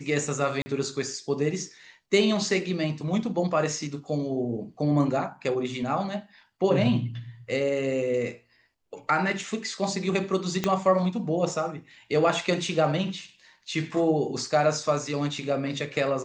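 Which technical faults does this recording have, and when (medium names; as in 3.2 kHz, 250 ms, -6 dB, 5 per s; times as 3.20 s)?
0.62–0.66 s: dropout 40 ms
10.64 s: pop -11 dBFS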